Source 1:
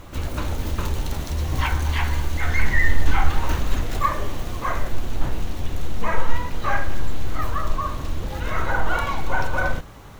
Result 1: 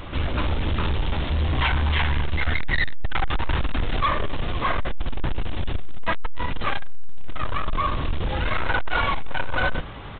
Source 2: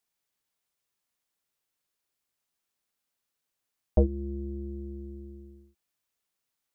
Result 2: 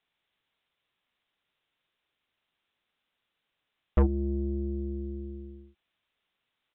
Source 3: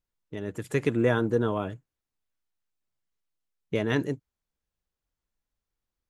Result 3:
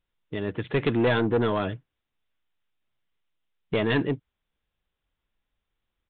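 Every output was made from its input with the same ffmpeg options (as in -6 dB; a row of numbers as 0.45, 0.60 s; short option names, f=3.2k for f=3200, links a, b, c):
-af "highshelf=f=2.9k:g=9.5,acontrast=31,aresample=8000,asoftclip=type=tanh:threshold=-17dB,aresample=44100"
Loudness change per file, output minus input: 0.0, +1.0, +2.0 LU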